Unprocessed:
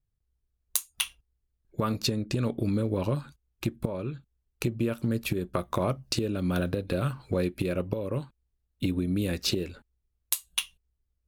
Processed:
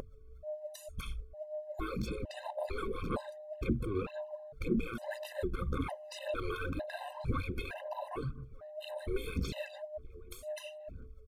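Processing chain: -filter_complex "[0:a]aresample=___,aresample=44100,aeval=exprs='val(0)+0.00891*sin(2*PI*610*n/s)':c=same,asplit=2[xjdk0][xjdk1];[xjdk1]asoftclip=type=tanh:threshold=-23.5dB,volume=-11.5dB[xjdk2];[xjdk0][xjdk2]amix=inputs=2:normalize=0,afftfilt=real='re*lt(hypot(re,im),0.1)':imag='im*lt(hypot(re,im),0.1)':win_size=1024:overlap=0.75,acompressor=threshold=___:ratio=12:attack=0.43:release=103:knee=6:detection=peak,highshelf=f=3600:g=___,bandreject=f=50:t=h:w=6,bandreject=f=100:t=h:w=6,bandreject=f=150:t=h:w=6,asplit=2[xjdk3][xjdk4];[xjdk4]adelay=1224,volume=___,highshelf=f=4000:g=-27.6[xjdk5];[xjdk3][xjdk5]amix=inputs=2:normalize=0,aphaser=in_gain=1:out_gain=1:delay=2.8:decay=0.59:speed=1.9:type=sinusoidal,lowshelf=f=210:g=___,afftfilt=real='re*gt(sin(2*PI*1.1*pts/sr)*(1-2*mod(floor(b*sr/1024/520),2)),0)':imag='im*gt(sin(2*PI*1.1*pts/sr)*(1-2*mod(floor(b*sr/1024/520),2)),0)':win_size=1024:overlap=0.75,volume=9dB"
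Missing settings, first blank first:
32000, -40dB, -12, -19dB, 9.5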